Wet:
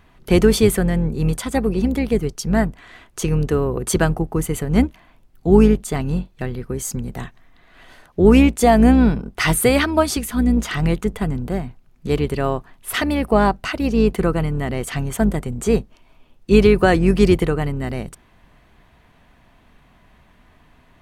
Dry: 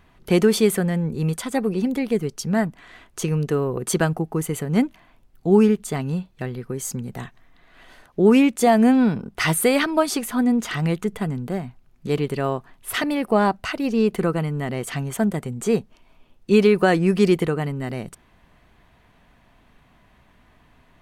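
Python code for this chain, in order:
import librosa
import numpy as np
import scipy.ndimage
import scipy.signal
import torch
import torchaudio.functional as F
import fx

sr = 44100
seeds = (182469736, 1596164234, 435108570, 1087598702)

y = fx.octave_divider(x, sr, octaves=2, level_db=-4.0)
y = fx.dynamic_eq(y, sr, hz=850.0, q=0.78, threshold_db=-39.0, ratio=4.0, max_db=-8, at=(10.11, 10.57))
y = y * 10.0 ** (2.5 / 20.0)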